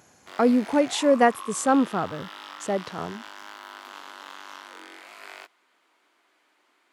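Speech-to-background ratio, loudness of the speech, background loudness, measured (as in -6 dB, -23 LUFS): 18.5 dB, -23.0 LUFS, -41.5 LUFS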